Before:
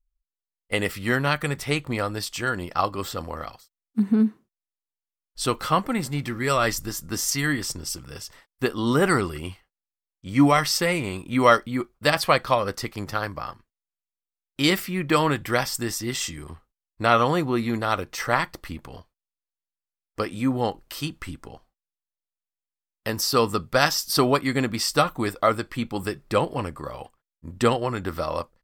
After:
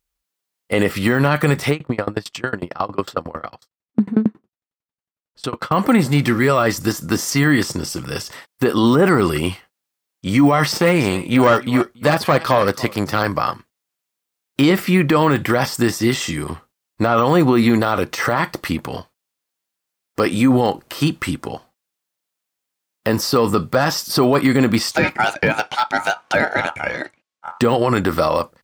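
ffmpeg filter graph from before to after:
-filter_complex "[0:a]asettb=1/sr,asplit=3[s0][s1][s2];[s0]atrim=end=1.714[s3];[s1]atrim=start=1.71:end=5.72,asetpts=PTS-STARTPTS,afade=t=in:d=0.004:c=qsin,afade=t=out:st=4.006:d=0.004:c=qsin,lowpass=f=1700:p=1,aeval=exprs='val(0)*pow(10,-30*if(lt(mod(11*n/s,1),2*abs(11)/1000),1-mod(11*n/s,1)/(2*abs(11)/1000),(mod(11*n/s,1)-2*abs(11)/1000)/(1-2*abs(11)/1000))/20)':c=same[s4];[s2]atrim=start=5.716[s5];[s3][s4]acrossfade=d=0.004:c1=hsin:c2=qsin[s6];[s6][s5]acrossfade=d=0.004:c1=qsin:c2=hsin,asettb=1/sr,asplit=3[s7][s8][s9];[s7]atrim=end=10.724[s10];[s8]atrim=start=10.72:end=13.23,asetpts=PTS-STARTPTS,afade=t=in:d=0.004:c=qsin,afade=t=out:st=2.506:d=0.004:c=qsin,aecho=1:1:284:0.0668,atrim=end_sample=110691,aeval=exprs='(tanh(6.31*val(0)+0.65)-tanh(0.65))/6.31':c=same[s11];[s9]atrim=start=13.226[s12];[s10][s11]acrossfade=d=0.004:c1=hsin:c2=qsin[s13];[s13][s12]acrossfade=d=0.004:c1=qsin:c2=hsin,asettb=1/sr,asplit=3[s14][s15][s16];[s14]atrim=end=24.914[s17];[s15]atrim=start=24.91:end=27.61,asetpts=PTS-STARTPTS,afade=t=in:d=0.004:c=qsin,afade=t=out:st=2.696:d=0.004:c=qsin,acrossover=split=180 7700:gain=0.112 1 0.112[s18][s19][s20];[s18][s19][s20]amix=inputs=3:normalize=0,aeval=exprs='val(0)*sin(2*PI*1100*n/s)':c=same[s21];[s16]atrim=start=27.606[s22];[s17][s21]acrossfade=d=0.004:c1=hsin:c2=qsin[s23];[s23][s22]acrossfade=d=0.004:c1=qsin:c2=hsin,deesser=0.95,highpass=120,alimiter=level_in=9.44:limit=0.891:release=50:level=0:latency=1,volume=0.596"

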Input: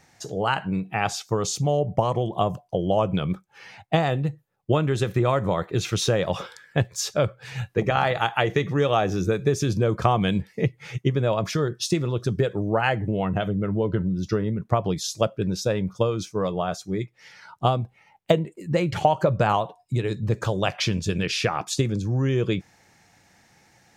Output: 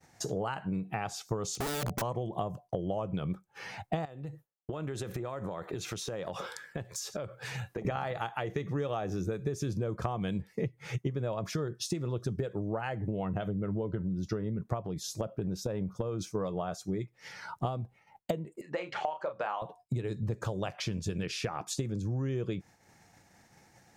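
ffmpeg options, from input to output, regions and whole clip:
-filter_complex "[0:a]asettb=1/sr,asplit=3[s0][s1][s2];[s0]atrim=end=1.554[s3];[s1]atrim=start=1.55:end=2.02,asetpts=PTS-STARTPTS,afade=t=in:d=0.004:c=qsin,afade=t=out:st=0.466:d=0.004:c=qsin,lowpass=7600,aeval=exprs='(mod(14.1*val(0)+1,2)-1)/14.1':c=same[s4];[s2]atrim=start=2.016[s5];[s3][s4]acrossfade=d=0.004:c1=hsin:c2=qsin[s6];[s6][s5]acrossfade=d=0.004:c1=qsin:c2=hsin,asettb=1/sr,asplit=3[s7][s8][s9];[s7]atrim=end=4.054[s10];[s8]atrim=start=4.05:end=7.85,asetpts=PTS-STARTPTS,afade=t=in:d=0.004:c=qsin,afade=t=out:st=3.796:d=0.004:c=qsin,lowshelf=f=170:g=-8.5,acompressor=threshold=0.0158:ratio=12:attack=3.2:release=140:knee=1:detection=peak[s11];[s9]atrim=start=7.846[s12];[s10][s11]acrossfade=d=0.004:c1=hsin:c2=qsin[s13];[s13][s12]acrossfade=d=0.004:c1=qsin:c2=hsin,asettb=1/sr,asplit=3[s14][s15][s16];[s14]atrim=end=14.824[s17];[s15]atrim=start=14.82:end=16.21,asetpts=PTS-STARTPTS,afade=t=in:d=0.004:c=qsin,afade=t=out:st=1.386:d=0.004:c=qsin,lowpass=f=1400:p=1,aemphasis=mode=production:type=50fm,acompressor=threshold=0.0631:ratio=4:attack=3.2:release=140:knee=1:detection=peak[s18];[s16]atrim=start=16.206[s19];[s17][s18]acrossfade=d=0.004:c1=hsin:c2=qsin[s20];[s20][s19]acrossfade=d=0.004:c1=qsin:c2=hsin,asettb=1/sr,asplit=3[s21][s22][s23];[s21]atrim=end=18.614[s24];[s22]atrim=start=18.61:end=19.62,asetpts=PTS-STARTPTS,afade=t=in:d=0.004:c=qsin,afade=t=out:st=1.006:d=0.004:c=qsin,highpass=710,lowpass=3600,asplit=2[s25][s26];[s26]adelay=33,volume=0.398[s27];[s25][s27]amix=inputs=2:normalize=0,atrim=end_sample=44541[s28];[s23]atrim=start=19.616[s29];[s24][s28]acrossfade=d=0.004:c1=hsin:c2=qsin[s30];[s30][s29]acrossfade=d=0.004:c1=qsin:c2=hsin,acompressor=threshold=0.0158:ratio=6,equalizer=f=3100:w=0.65:g=-5.5,agate=range=0.0224:threshold=0.00224:ratio=3:detection=peak,volume=1.78"

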